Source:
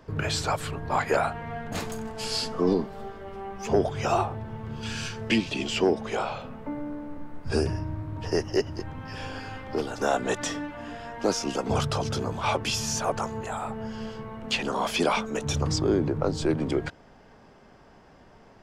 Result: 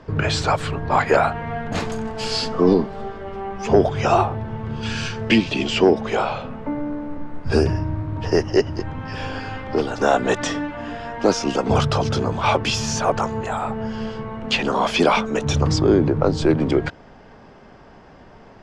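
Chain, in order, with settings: distance through air 78 m; trim +8 dB

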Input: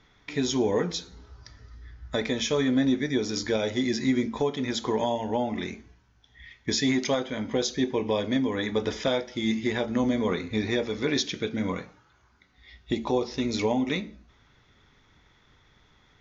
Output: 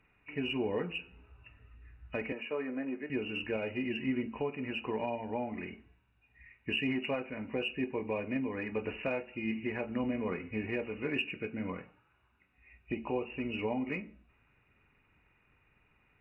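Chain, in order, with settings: knee-point frequency compression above 2.2 kHz 4:1; 2.32–3.10 s: three-band isolator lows -20 dB, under 270 Hz, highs -21 dB, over 2.3 kHz; Chebyshev shaper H 7 -41 dB, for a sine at -12 dBFS; trim -8.5 dB

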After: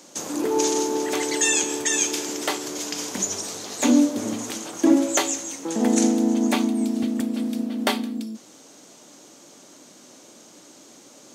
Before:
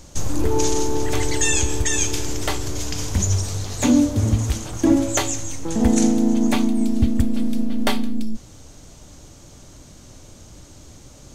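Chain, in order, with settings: high-pass 230 Hz 24 dB/octave

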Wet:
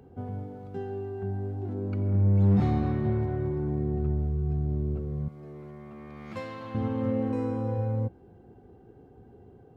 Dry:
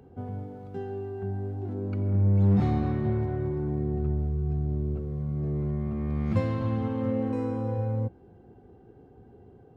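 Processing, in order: 5.28–6.75 s: high-pass 1 kHz 6 dB/octave

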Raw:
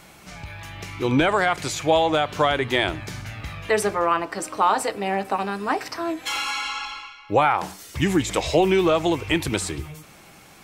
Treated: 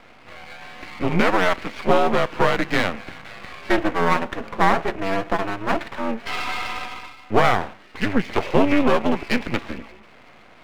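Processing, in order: mistuned SSB -91 Hz 250–2800 Hz; half-wave rectifier; trim +6 dB

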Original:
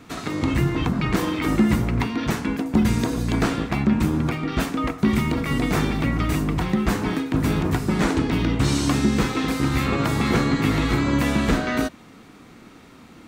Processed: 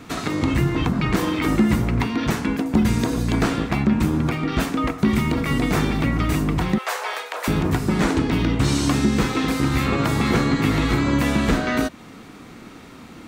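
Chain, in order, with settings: 6.78–7.48 s: steep high-pass 500 Hz 48 dB/octave; in parallel at +1 dB: compression, threshold -28 dBFS, peak gain reduction 14 dB; on the sum: trim -1.5 dB

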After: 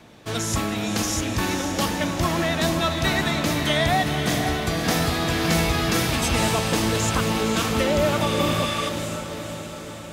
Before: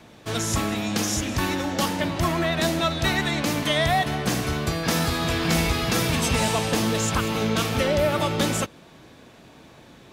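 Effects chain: echo that smears into a reverb 530 ms, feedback 60%, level -7 dB; spectral replace 8.28–8.87 s, 1.1–12 kHz before

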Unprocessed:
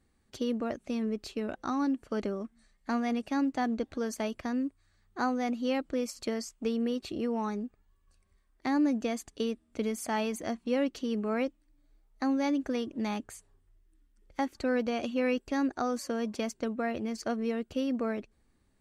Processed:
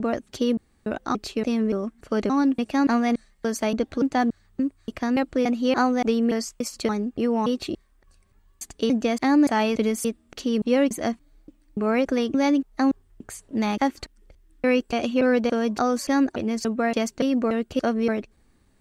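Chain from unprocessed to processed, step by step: slices played last to first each 287 ms, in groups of 3; trim +8.5 dB

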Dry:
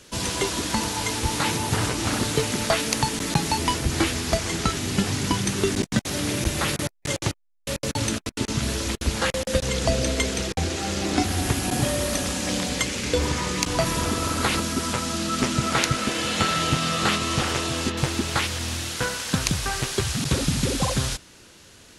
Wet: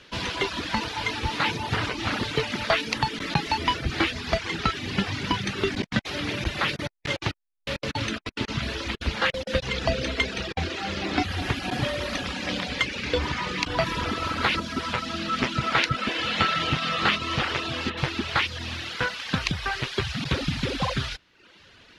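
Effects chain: tilt shelf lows -7 dB, about 1.3 kHz; reverb removal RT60 0.74 s; distance through air 330 m; trim +4 dB

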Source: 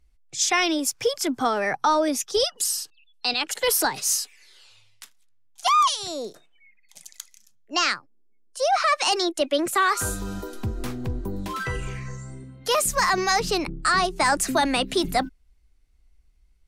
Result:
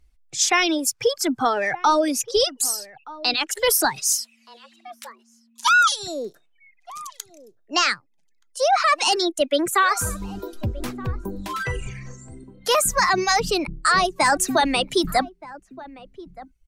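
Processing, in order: reverb removal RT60 1.7 s; echo from a far wall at 210 m, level -18 dB; 4.13–5.92 s: frequency shift +230 Hz; trim +3 dB

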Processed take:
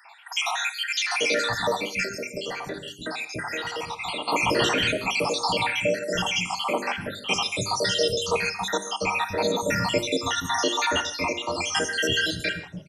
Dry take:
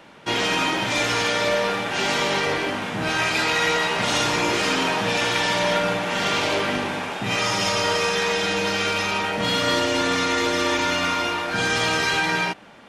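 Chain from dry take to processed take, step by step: random holes in the spectrogram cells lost 79%; hum notches 50/100/150/200/250/300/350/400 Hz; three bands offset in time highs, mids, lows 50/340 ms, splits 210/1500 Hz; gated-style reverb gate 180 ms flat, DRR 11 dB; 2.03–4.28 s: compression 3:1, threshold -36 dBFS, peak gain reduction 10 dB; trim +5 dB

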